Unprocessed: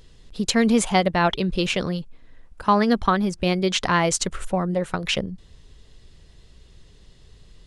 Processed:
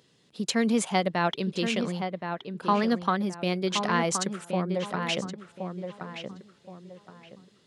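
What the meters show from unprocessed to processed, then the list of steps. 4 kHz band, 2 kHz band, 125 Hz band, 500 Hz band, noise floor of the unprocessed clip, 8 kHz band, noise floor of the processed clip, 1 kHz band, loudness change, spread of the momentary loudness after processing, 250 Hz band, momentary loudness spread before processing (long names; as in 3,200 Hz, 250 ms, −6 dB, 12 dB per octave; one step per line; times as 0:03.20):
−5.5 dB, −5.5 dB, −5.5 dB, −5.0 dB, −52 dBFS, −6.0 dB, −64 dBFS, −5.0 dB, −6.5 dB, 14 LU, −5.0 dB, 9 LU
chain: high-pass filter 140 Hz 24 dB per octave
feedback echo with a low-pass in the loop 1,072 ms, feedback 31%, low-pass 2,300 Hz, level −6.5 dB
level −6 dB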